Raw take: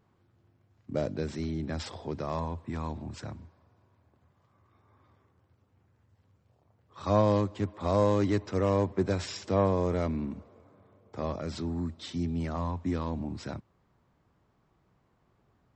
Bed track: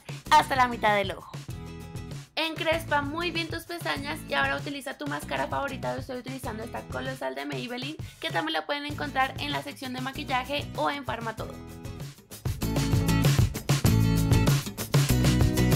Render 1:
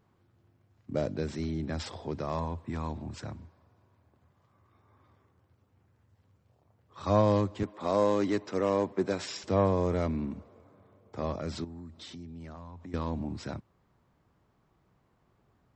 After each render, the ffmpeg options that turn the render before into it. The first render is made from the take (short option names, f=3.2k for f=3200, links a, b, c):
-filter_complex "[0:a]asettb=1/sr,asplit=3[a][b][c];[a]atrim=end=7.634[d];[b]atrim=start=7.63:end=9.44,asetpts=PTS-STARTPTS,afade=t=in:d=0.004:c=qsin,afade=t=out:st=1.806:d=0.004:c=qsin,highpass=200[e];[c]atrim=start=9.436[f];[d][e]acrossfade=d=0.004:c1=hsin:c2=qsin[g];[g][f]acrossfade=d=0.004:c1=qsin:c2=hsin,asettb=1/sr,asplit=3[h][i][j];[h]atrim=end=11.644[k];[i]atrim=start=11.64:end=12.94,asetpts=PTS-STARTPTS,afade=t=in:d=0.004:c=qsin,afade=t=out:st=1.296:d=0.004:c=qsin,acompressor=threshold=-42dB:ratio=6:attack=3.2:release=140:knee=1:detection=peak[l];[j]atrim=start=12.936[m];[k][l]acrossfade=d=0.004:c1=hsin:c2=qsin[n];[n][m]acrossfade=d=0.004:c1=qsin:c2=hsin"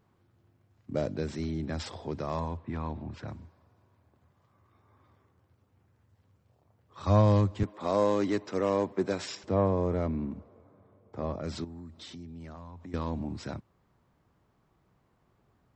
-filter_complex "[0:a]asettb=1/sr,asplit=3[a][b][c];[a]atrim=end=2.574[d];[b]atrim=start=2.57:end=3.28,asetpts=PTS-STARTPTS,afade=t=in:d=0.004:c=qsin,afade=t=out:st=0.706:d=0.004:c=qsin,lowpass=3.4k[e];[c]atrim=start=3.276[f];[d][e]acrossfade=d=0.004:c1=hsin:c2=qsin[g];[g][f]acrossfade=d=0.004:c1=qsin:c2=hsin,asplit=3[h][i][j];[h]afade=t=out:st=7.06:d=0.02[k];[i]asubboost=boost=2:cutoff=200,afade=t=in:st=7.06:d=0.02,afade=t=out:st=7.65:d=0.02[l];[j]afade=t=in:st=7.65:d=0.02[m];[k][l][m]amix=inputs=3:normalize=0,asettb=1/sr,asplit=3[n][o][p];[n]atrim=end=9.354[q];[o]atrim=start=9.35:end=11.44,asetpts=PTS-STARTPTS,afade=t=in:d=0.004:c=qsin,afade=t=out:st=2.086:d=0.004:c=qsin,highshelf=f=2.2k:g=-10.5[r];[p]atrim=start=11.436[s];[q][r]acrossfade=d=0.004:c1=hsin:c2=qsin[t];[t][s]acrossfade=d=0.004:c1=qsin:c2=hsin"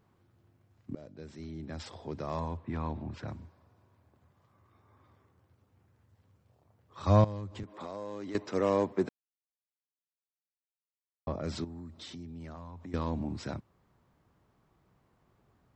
-filter_complex "[0:a]asettb=1/sr,asplit=3[a][b][c];[a]atrim=end=7.244[d];[b]atrim=start=7.24:end=8.35,asetpts=PTS-STARTPTS,afade=t=in:d=0.004:c=qsin,afade=t=out:st=1.106:d=0.004:c=qsin,acompressor=threshold=-38dB:ratio=5:attack=3.2:release=140:knee=1:detection=peak[e];[c]atrim=start=8.346[f];[d][e]acrossfade=d=0.004:c1=hsin:c2=qsin[g];[g][f]acrossfade=d=0.004:c1=qsin:c2=hsin,asplit=4[h][i][j][k];[h]atrim=end=0.95,asetpts=PTS-STARTPTS,afade=t=out:st=0.946:d=0.004:c=hsin:silence=0.0749894[l];[i]atrim=start=0.95:end=9.09,asetpts=PTS-STARTPTS,afade=t=in:d=1.88:silence=0.0749894,afade=t=out:st=8.136:d=0.004:c=hsin[m];[j]atrim=start=9.09:end=11.27,asetpts=PTS-STARTPTS,volume=0[n];[k]atrim=start=11.27,asetpts=PTS-STARTPTS,afade=t=in:d=0.004:c=hsin[o];[l][m][n][o]concat=n=4:v=0:a=1"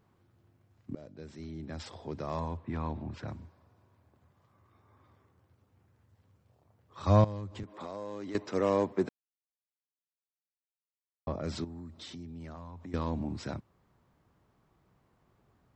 -af anull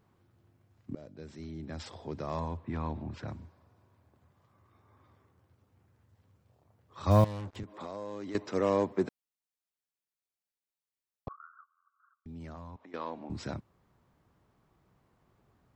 -filter_complex "[0:a]asettb=1/sr,asplit=3[a][b][c];[a]atrim=end=7.114[d];[b]atrim=start=7.11:end=7.56,asetpts=PTS-STARTPTS,afade=t=in:d=0.004:c=qsin,afade=t=out:st=0.446:d=0.004:c=qsin,acrusher=bits=6:mix=0:aa=0.5[e];[c]atrim=start=7.556[f];[d][e]acrossfade=d=0.004:c1=hsin:c2=qsin[g];[g][f]acrossfade=d=0.004:c1=qsin:c2=hsin,asettb=1/sr,asplit=3[h][i][j];[h]atrim=end=11.284[k];[i]atrim=start=11.28:end=12.26,asetpts=PTS-STARTPTS,afade=t=in:d=0.004:c=qsin,afade=t=out:st=0.976:d=0.004:c=qsin,asuperpass=centerf=1300:order=12:qfactor=3[l];[j]atrim=start=12.256[m];[k][l]acrossfade=d=0.004:c1=hsin:c2=qsin[n];[n][m]acrossfade=d=0.004:c1=qsin:c2=hsin,asettb=1/sr,asplit=3[o][p][q];[o]atrim=end=12.764[r];[p]atrim=start=12.76:end=13.3,asetpts=PTS-STARTPTS,afade=t=in:d=0.004:c=qsin,afade=t=out:st=0.536:d=0.004:c=qsin,highpass=450,lowpass=3.6k[s];[q]atrim=start=13.296[t];[r][s]acrossfade=d=0.004:c1=hsin:c2=qsin[u];[u][t]acrossfade=d=0.004:c1=qsin:c2=hsin"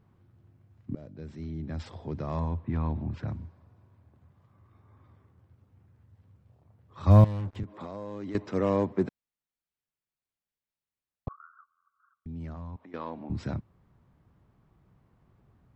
-af "bass=f=250:g=8,treble=f=4k:g=-7"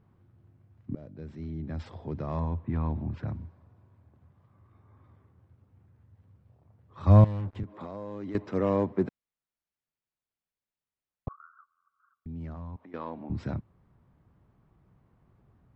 -af "highshelf=f=4.6k:g=-10.5"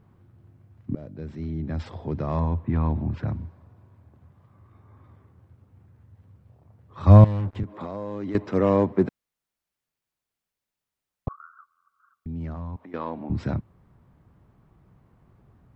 -af "volume=6dB,alimiter=limit=-3dB:level=0:latency=1"